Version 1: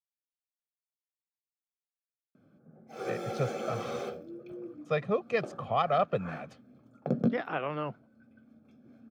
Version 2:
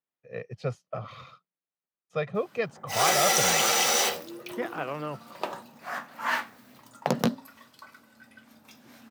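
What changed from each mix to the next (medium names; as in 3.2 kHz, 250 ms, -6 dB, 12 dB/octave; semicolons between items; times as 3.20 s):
speech: entry -2.75 s; background: remove boxcar filter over 46 samples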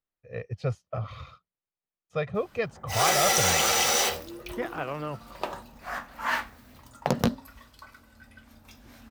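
master: remove high-pass 140 Hz 24 dB/octave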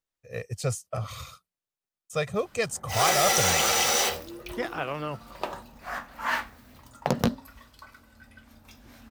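speech: remove distance through air 310 m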